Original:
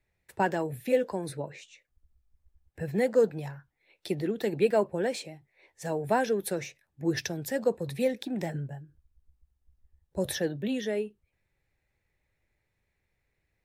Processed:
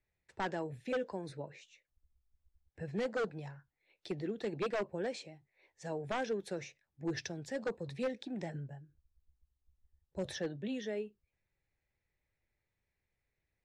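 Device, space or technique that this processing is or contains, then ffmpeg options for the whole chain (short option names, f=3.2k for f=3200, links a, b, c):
synthesiser wavefolder: -af "aeval=exprs='0.1*(abs(mod(val(0)/0.1+3,4)-2)-1)':c=same,lowpass=f=7.3k:w=0.5412,lowpass=f=7.3k:w=1.3066,volume=-8dB"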